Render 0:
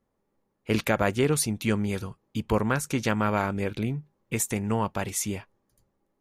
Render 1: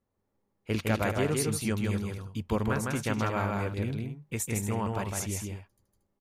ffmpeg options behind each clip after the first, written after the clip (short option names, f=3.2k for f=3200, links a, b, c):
-filter_complex "[0:a]equalizer=f=92:w=3.3:g=8,asplit=2[a][b];[b]aecho=0:1:158|231:0.708|0.316[c];[a][c]amix=inputs=2:normalize=0,volume=-6dB"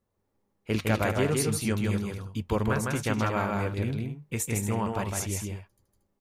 -af "flanger=delay=1.8:depth=6.3:regen=-80:speed=0.36:shape=sinusoidal,volume=6.5dB"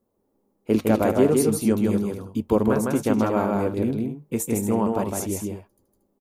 -af "firequalizer=gain_entry='entry(120,0);entry(240,13);entry(1800,-3);entry(13000,8)':delay=0.05:min_phase=1,volume=-2dB"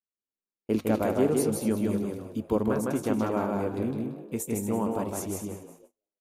-filter_complex "[0:a]asplit=5[a][b][c][d][e];[b]adelay=179,afreqshift=74,volume=-13dB[f];[c]adelay=358,afreqshift=148,volume=-20.5dB[g];[d]adelay=537,afreqshift=222,volume=-28.1dB[h];[e]adelay=716,afreqshift=296,volume=-35.6dB[i];[a][f][g][h][i]amix=inputs=5:normalize=0,agate=range=-30dB:threshold=-46dB:ratio=16:detection=peak,volume=-6dB"